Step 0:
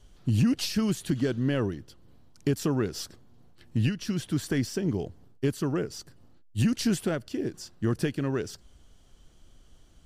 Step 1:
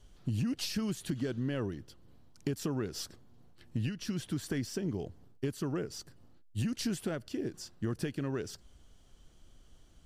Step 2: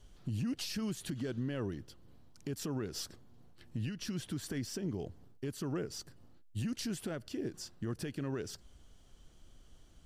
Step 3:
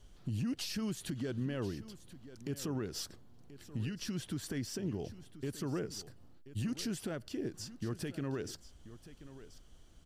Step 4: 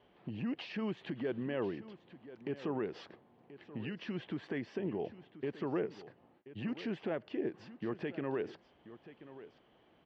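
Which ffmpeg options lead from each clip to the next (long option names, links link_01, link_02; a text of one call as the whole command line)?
ffmpeg -i in.wav -af "acompressor=threshold=-29dB:ratio=2.5,volume=-3dB" out.wav
ffmpeg -i in.wav -af "alimiter=level_in=5dB:limit=-24dB:level=0:latency=1:release=109,volume=-5dB" out.wav
ffmpeg -i in.wav -af "aecho=1:1:1032:0.168" out.wav
ffmpeg -i in.wav -af "highpass=270,equalizer=frequency=270:width_type=q:width=4:gain=-4,equalizer=frequency=840:width_type=q:width=4:gain=3,equalizer=frequency=1400:width_type=q:width=4:gain=-7,lowpass=frequency=2600:width=0.5412,lowpass=frequency=2600:width=1.3066,volume=5.5dB" out.wav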